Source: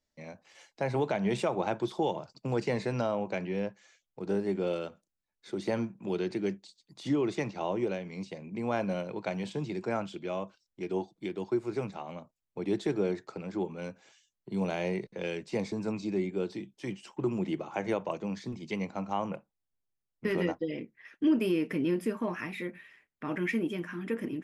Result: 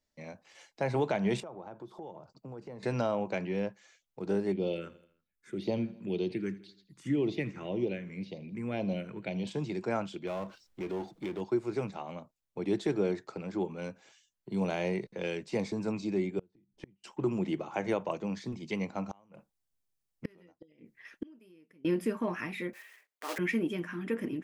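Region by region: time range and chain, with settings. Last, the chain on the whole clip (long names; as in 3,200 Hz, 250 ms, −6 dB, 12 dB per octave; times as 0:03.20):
0:01.40–0:02.83: flat-topped bell 4,200 Hz −10.5 dB 2.8 octaves + downward compressor 2.5 to 1, threshold −48 dBFS
0:04.52–0:09.47: all-pass phaser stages 4, 1.9 Hz, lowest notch 650–1,600 Hz + repeating echo 82 ms, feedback 54%, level −19 dB
0:10.27–0:11.41: high-shelf EQ 4,800 Hz −5.5 dB + downward compressor 3 to 1, threshold −34 dBFS + power curve on the samples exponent 0.7
0:16.39–0:17.04: RIAA equalisation playback + gate with flip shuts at −28 dBFS, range −35 dB
0:19.06–0:21.85: bass and treble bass +2 dB, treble +5 dB + gate with flip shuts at −25 dBFS, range −31 dB
0:22.73–0:23.39: one scale factor per block 3 bits + high-pass filter 420 Hz 24 dB per octave
whole clip: no processing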